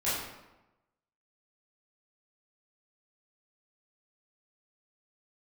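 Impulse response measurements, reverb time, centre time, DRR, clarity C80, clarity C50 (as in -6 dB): 1.0 s, 74 ms, -12.0 dB, 3.0 dB, 0.0 dB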